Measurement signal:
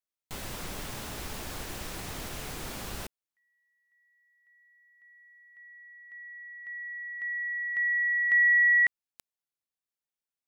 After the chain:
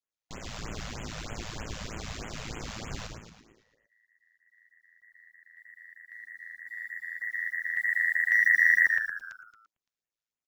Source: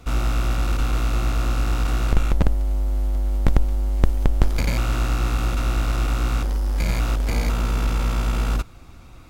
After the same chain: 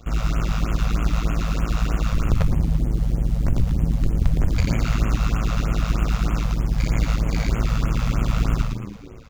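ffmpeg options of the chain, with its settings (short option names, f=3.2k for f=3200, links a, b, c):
-filter_complex "[0:a]aresample=16000,asoftclip=type=tanh:threshold=-11dB,aresample=44100,bandreject=f=880:w=12,acrusher=bits=8:mode=log:mix=0:aa=0.000001,asplit=8[a][b][c][d][e][f][g][h];[b]adelay=113,afreqshift=-84,volume=-4dB[i];[c]adelay=226,afreqshift=-168,volume=-9.7dB[j];[d]adelay=339,afreqshift=-252,volume=-15.4dB[k];[e]adelay=452,afreqshift=-336,volume=-21dB[l];[f]adelay=565,afreqshift=-420,volume=-26.7dB[m];[g]adelay=678,afreqshift=-504,volume=-32.4dB[n];[h]adelay=791,afreqshift=-588,volume=-38.1dB[o];[a][i][j][k][l][m][n][o]amix=inputs=8:normalize=0,tremolo=f=110:d=0.75,afftfilt=real='re*(1-between(b*sr/1024,290*pow(4800/290,0.5+0.5*sin(2*PI*3.2*pts/sr))/1.41,290*pow(4800/290,0.5+0.5*sin(2*PI*3.2*pts/sr))*1.41))':imag='im*(1-between(b*sr/1024,290*pow(4800/290,0.5+0.5*sin(2*PI*3.2*pts/sr))/1.41,290*pow(4800/290,0.5+0.5*sin(2*PI*3.2*pts/sr))*1.41))':win_size=1024:overlap=0.75,volume=2.5dB"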